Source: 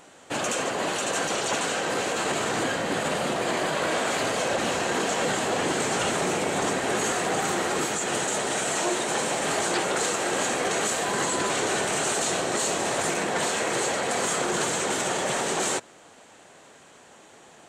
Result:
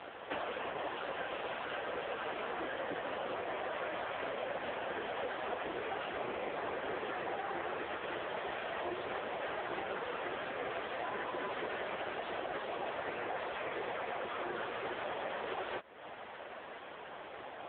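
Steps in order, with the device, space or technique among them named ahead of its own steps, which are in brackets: 9.82–11.20 s: high-pass 100 Hz 24 dB/octave; voicemail (band-pass 340–3200 Hz; compression 8:1, threshold -43 dBFS, peak gain reduction 19 dB; trim +9.5 dB; AMR-NB 5.9 kbps 8 kHz)

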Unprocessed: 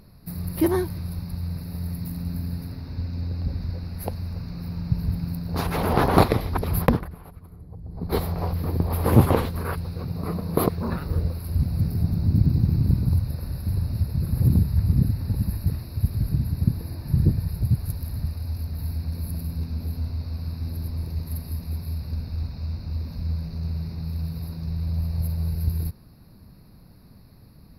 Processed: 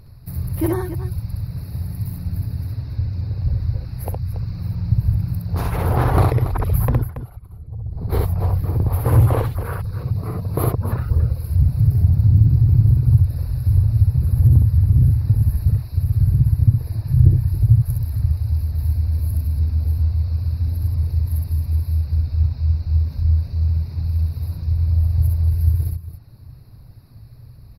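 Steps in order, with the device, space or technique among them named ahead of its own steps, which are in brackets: reverb removal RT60 0.76 s; car stereo with a boomy subwoofer (resonant low shelf 150 Hz +6.5 dB, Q 3; peak limiter -7 dBFS, peak gain reduction 10.5 dB); dynamic bell 4.2 kHz, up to -7 dB, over -53 dBFS, Q 1; loudspeakers at several distances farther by 22 m -2 dB, 96 m -11 dB

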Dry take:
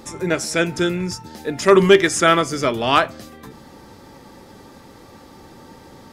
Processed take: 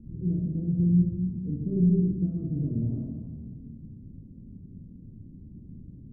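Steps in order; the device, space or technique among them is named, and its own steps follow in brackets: club heard from the street (peak limiter -10.5 dBFS, peak gain reduction 8.5 dB; low-pass 200 Hz 24 dB/octave; reverberation RT60 1.5 s, pre-delay 27 ms, DRR -2 dB); trim +1.5 dB

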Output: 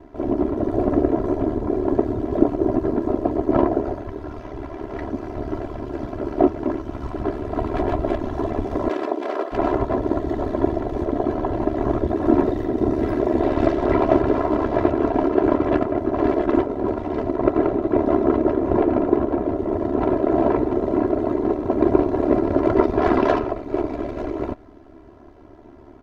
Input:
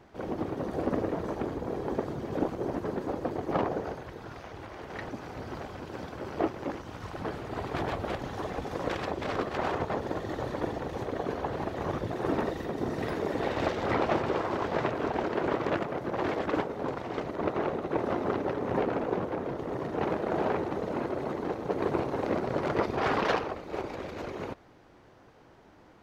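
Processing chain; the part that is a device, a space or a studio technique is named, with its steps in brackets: 8.88–9.51 s: high-pass 220 Hz -> 490 Hz 24 dB/octave; tilt shelf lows +8.5 dB, about 1.1 kHz; ring-modulated robot voice (ring modulator 36 Hz; comb 3 ms, depth 79%); trim +6 dB

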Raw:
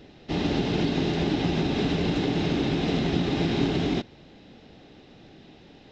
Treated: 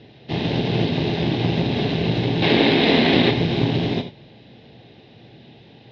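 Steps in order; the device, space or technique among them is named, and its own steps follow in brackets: guitar amplifier (valve stage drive 15 dB, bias 0.75; tone controls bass 0 dB, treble +7 dB; cabinet simulation 79–4000 Hz, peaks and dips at 120 Hz +9 dB, 290 Hz -5 dB, 1.3 kHz -9 dB); 2.42–3.31 s: ten-band graphic EQ 125 Hz -8 dB, 250 Hz +8 dB, 500 Hz +5 dB, 1 kHz +6 dB, 2 kHz +10 dB, 4 kHz +7 dB; gated-style reverb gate 110 ms flat, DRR 7.5 dB; trim +7.5 dB

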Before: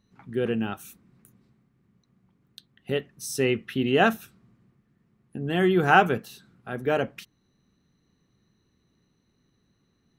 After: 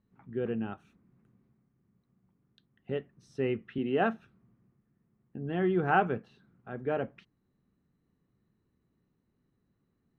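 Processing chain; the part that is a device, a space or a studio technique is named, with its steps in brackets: 3.78–4.18 s: high-pass 150 Hz; phone in a pocket (low-pass 3.1 kHz 12 dB/octave; treble shelf 2.4 kHz -11 dB); trim -6 dB

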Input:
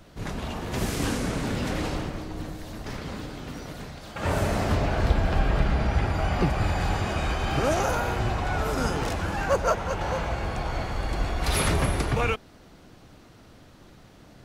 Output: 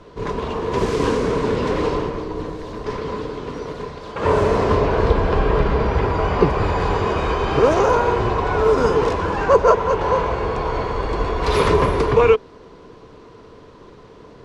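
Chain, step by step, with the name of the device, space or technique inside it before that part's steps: inside a cardboard box (low-pass 5.5 kHz 12 dB/octave; small resonant body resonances 440/1000 Hz, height 16 dB, ringing for 35 ms); trim +3 dB

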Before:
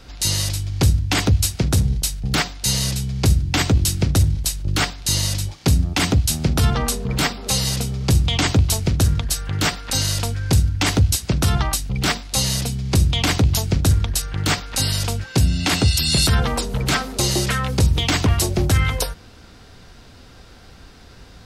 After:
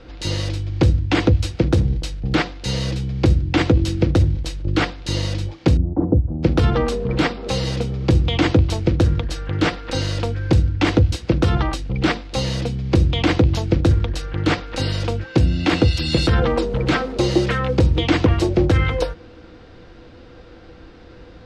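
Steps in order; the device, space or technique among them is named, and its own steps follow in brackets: inside a cardboard box (low-pass 3.2 kHz 12 dB/octave; small resonant body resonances 330/490 Hz, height 14 dB, ringing for 85 ms); 5.77–6.43 s: Bessel low-pass 530 Hz, order 6

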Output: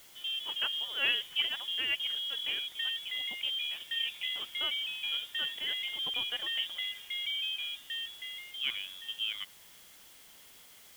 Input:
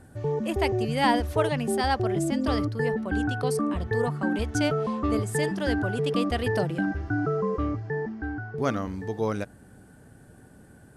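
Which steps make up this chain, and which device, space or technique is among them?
scrambled radio voice (band-pass 310–3000 Hz; frequency inversion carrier 3.6 kHz; white noise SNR 20 dB); trim -6.5 dB

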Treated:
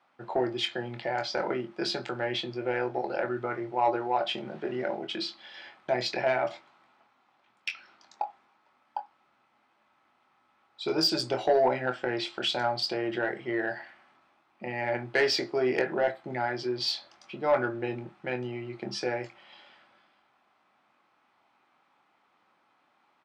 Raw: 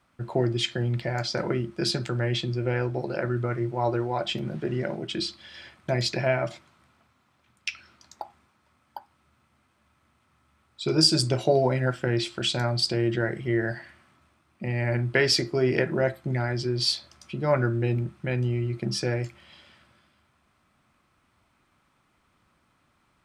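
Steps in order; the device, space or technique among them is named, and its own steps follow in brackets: intercom (band-pass 330–4300 Hz; peaking EQ 810 Hz +9 dB 0.32 oct; saturation -14.5 dBFS, distortion -19 dB; doubling 24 ms -9 dB); trim -1 dB

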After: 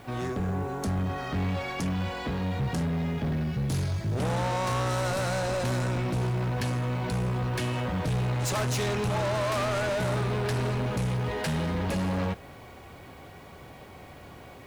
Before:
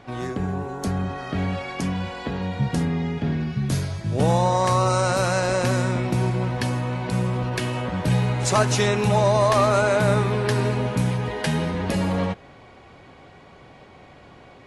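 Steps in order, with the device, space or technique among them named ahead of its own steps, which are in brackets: open-reel tape (saturation -26 dBFS, distortion -7 dB; peaking EQ 74 Hz +5 dB 0.9 oct; white noise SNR 35 dB)

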